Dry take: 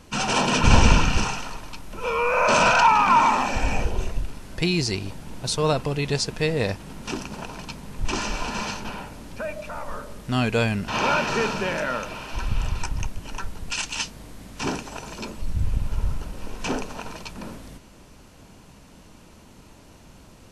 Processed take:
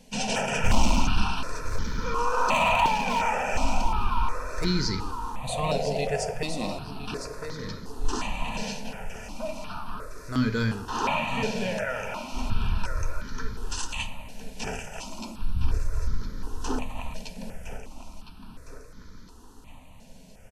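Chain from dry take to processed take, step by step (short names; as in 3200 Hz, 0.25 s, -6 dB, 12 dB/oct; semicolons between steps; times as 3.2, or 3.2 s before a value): painted sound noise, 5.48–6.34, 370–780 Hz -28 dBFS; overloaded stage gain 12.5 dB; feedback echo 1.011 s, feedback 47%, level -10 dB; on a send at -6.5 dB: reverb RT60 0.90 s, pre-delay 4 ms; on the sum: step phaser 2.8 Hz 330–2700 Hz; gain -2.5 dB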